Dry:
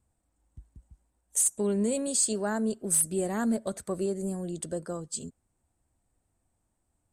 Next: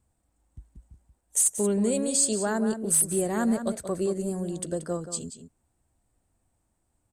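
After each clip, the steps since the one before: outdoor echo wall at 31 m, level -9 dB; gain +2.5 dB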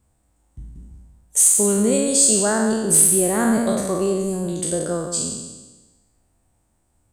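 spectral trails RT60 1.17 s; gain +5 dB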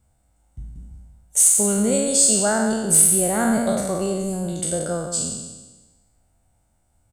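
comb 1.4 ms, depth 40%; gain -1 dB

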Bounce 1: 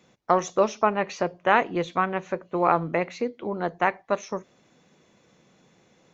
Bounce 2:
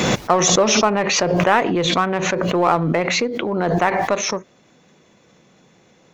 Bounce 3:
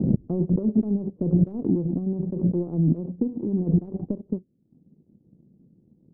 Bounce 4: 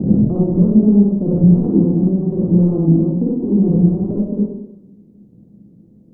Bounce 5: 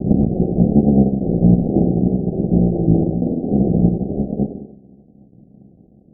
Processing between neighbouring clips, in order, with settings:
in parallel at -5 dB: hard clip -23 dBFS, distortion -5 dB; on the sum: backwards sustainer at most 21 dB/s; gain +2 dB
inverse Chebyshev low-pass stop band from 1800 Hz, stop band 80 dB; transient shaper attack +5 dB, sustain -9 dB
in parallel at -2.5 dB: limiter -19 dBFS, peak gain reduction 10 dB; on the sum: reverb RT60 0.85 s, pre-delay 42 ms, DRR -5 dB
cycle switcher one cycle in 3, muted; Chebyshev low-pass 780 Hz, order 8

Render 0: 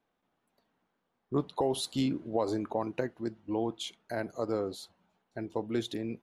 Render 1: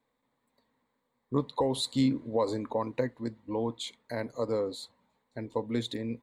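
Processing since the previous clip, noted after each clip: ripple EQ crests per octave 1, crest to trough 10 dB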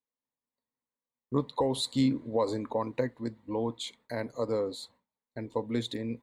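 gate with hold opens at -54 dBFS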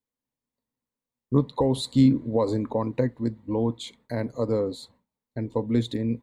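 low shelf 360 Hz +12 dB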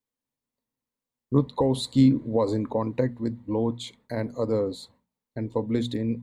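notches 60/120/180/240 Hz

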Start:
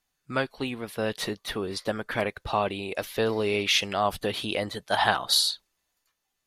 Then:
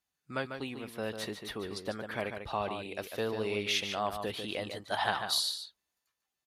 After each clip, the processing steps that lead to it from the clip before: HPF 47 Hz; outdoor echo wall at 25 m, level -7 dB; gain -8 dB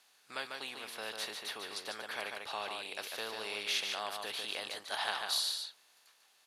per-bin compression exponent 0.6; HPF 1300 Hz 6 dB/oct; gain -4 dB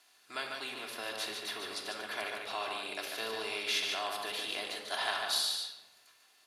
reverb RT60 1.0 s, pre-delay 3 ms, DRR 1 dB

